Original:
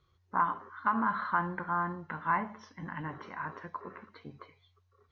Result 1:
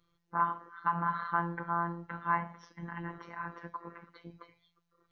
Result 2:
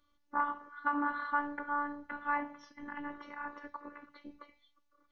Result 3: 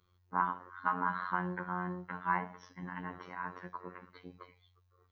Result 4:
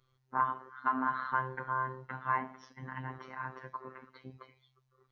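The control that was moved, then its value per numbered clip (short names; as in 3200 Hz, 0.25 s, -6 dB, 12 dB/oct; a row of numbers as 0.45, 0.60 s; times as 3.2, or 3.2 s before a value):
robotiser, frequency: 170, 290, 90, 130 Hz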